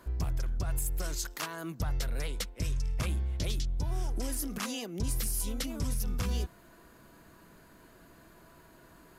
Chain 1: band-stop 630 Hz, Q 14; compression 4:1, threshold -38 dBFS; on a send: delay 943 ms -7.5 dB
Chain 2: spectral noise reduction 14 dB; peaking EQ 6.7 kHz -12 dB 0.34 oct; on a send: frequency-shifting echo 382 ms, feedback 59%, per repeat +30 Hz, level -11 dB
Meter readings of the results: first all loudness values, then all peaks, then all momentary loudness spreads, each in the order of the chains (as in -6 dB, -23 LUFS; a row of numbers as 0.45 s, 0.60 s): -42.0 LUFS, -39.0 LUFS; -25.0 dBFS, -22.0 dBFS; 16 LU, 14 LU